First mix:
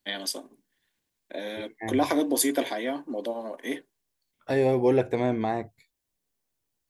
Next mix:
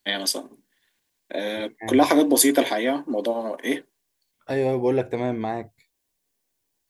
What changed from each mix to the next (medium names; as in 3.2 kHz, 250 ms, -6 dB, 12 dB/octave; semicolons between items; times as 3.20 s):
first voice +7.0 dB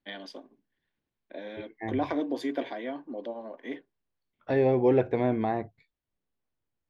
first voice -11.5 dB; master: add distance through air 260 m